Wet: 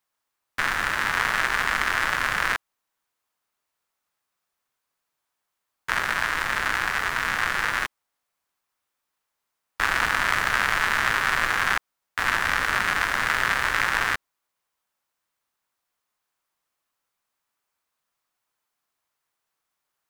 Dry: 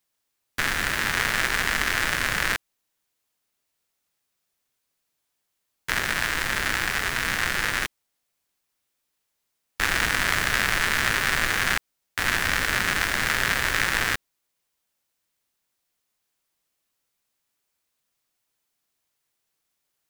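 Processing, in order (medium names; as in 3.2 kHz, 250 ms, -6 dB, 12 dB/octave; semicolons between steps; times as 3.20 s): peaking EQ 1.1 kHz +10 dB 1.6 oct; loudspeaker Doppler distortion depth 0.21 ms; trim -5 dB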